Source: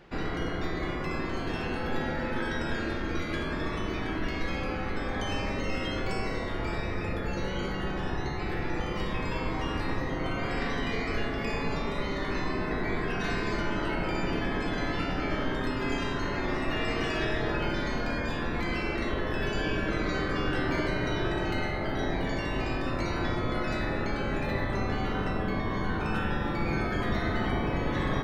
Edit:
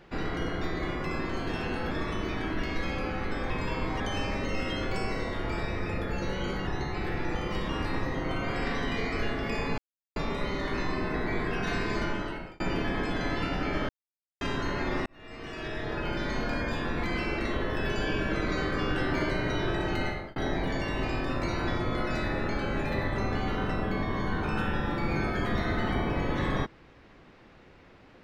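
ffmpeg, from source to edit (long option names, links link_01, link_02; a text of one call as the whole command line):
ffmpeg -i in.wav -filter_complex "[0:a]asplit=12[link_01][link_02][link_03][link_04][link_05][link_06][link_07][link_08][link_09][link_10][link_11][link_12];[link_01]atrim=end=1.912[link_13];[link_02]atrim=start=3.558:end=5.152[link_14];[link_03]atrim=start=9.138:end=9.642[link_15];[link_04]atrim=start=5.148:end=7.822[link_16];[link_05]atrim=start=8.118:end=9.142[link_17];[link_06]atrim=start=9.638:end=11.73,asetpts=PTS-STARTPTS,afade=type=out:start_time=2.088:duration=0.004:curve=hsin,apad=pad_dur=0.38[link_18];[link_07]atrim=start=11.73:end=14.17,asetpts=PTS-STARTPTS,afade=type=in:duration=0.004:curve=hsin,afade=type=out:start_time=1.9:duration=0.54[link_19];[link_08]atrim=start=14.17:end=15.46,asetpts=PTS-STARTPTS,afade=type=in:duration=0.004:curve=hsin,afade=type=out:start_time=1.286:duration=0.004:curve=hsin[link_20];[link_09]atrim=start=15.46:end=15.98,asetpts=PTS-STARTPTS,volume=0[link_21];[link_10]atrim=start=15.98:end=16.63,asetpts=PTS-STARTPTS,afade=type=in:duration=0.004:curve=hsin,afade=type=out:start_time=0.646:duration=0.004:curve=hsin[link_22];[link_11]atrim=start=16.63:end=21.93,asetpts=PTS-STARTPTS,afade=type=in:duration=1.35,afade=type=out:start_time=5.01:duration=0.29[link_23];[link_12]atrim=start=21.93,asetpts=PTS-STARTPTS,afade=type=in:duration=0.004:curve=hsin[link_24];[link_13][link_14]acrossfade=duration=0.004:curve1=hsin:curve2=hsin[link_25];[link_25][link_15]acrossfade=duration=0.004:curve1=hsin:curve2=hsin[link_26];[link_26][link_16]acrossfade=duration=0.004:curve1=hsin:curve2=hsin[link_27];[link_27][link_17]acrossfade=duration=0.004:curve1=hsin:curve2=hsin[link_28];[link_18][link_19][link_20][link_21][link_22][link_23][link_24]concat=n=7:v=0:a=1[link_29];[link_28][link_29]acrossfade=duration=0.004:curve1=hsin:curve2=hsin" out.wav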